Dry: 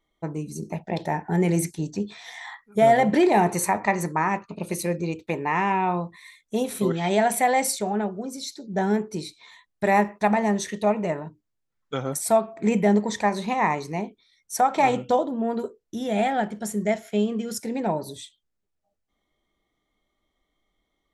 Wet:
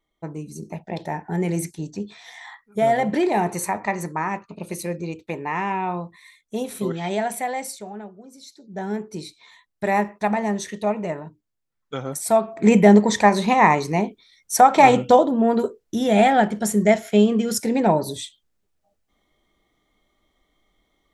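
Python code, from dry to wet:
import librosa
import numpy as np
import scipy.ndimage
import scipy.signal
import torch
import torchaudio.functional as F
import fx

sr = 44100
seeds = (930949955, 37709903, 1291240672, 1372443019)

y = fx.gain(x, sr, db=fx.line((7.03, -2.0), (8.23, -12.5), (9.23, -1.0), (12.17, -1.0), (12.71, 7.5)))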